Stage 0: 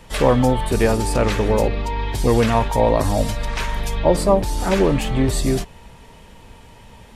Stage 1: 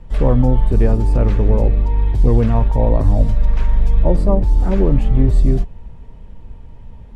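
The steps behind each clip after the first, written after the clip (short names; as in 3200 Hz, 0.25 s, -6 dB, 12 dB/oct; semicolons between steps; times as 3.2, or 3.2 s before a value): tilt -4 dB/oct; gain -7.5 dB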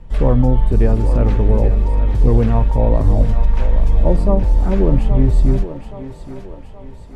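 thinning echo 0.823 s, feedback 53%, high-pass 310 Hz, level -9 dB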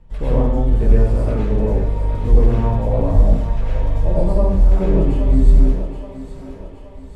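plate-style reverb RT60 0.72 s, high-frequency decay 0.95×, pre-delay 80 ms, DRR -7 dB; gain -9.5 dB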